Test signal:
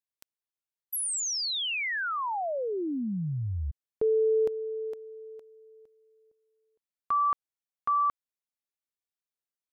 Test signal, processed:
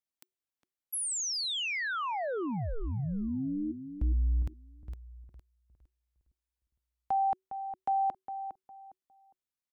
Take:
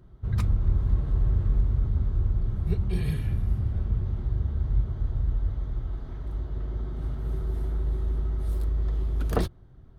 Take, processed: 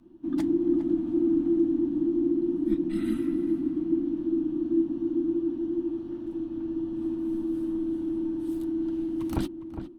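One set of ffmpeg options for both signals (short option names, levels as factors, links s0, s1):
-filter_complex "[0:a]afreqshift=-380,asplit=2[s0][s1];[s1]adelay=408,lowpass=f=1400:p=1,volume=0.355,asplit=2[s2][s3];[s3]adelay=408,lowpass=f=1400:p=1,volume=0.27,asplit=2[s4][s5];[s5]adelay=408,lowpass=f=1400:p=1,volume=0.27[s6];[s2][s4][s6]amix=inputs=3:normalize=0[s7];[s0][s7]amix=inputs=2:normalize=0,volume=0.75"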